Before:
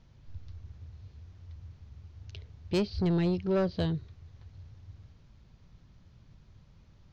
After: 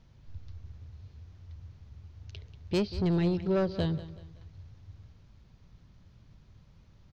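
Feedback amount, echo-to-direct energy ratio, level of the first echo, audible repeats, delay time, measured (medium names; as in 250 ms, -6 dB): 37%, -15.0 dB, -15.5 dB, 3, 188 ms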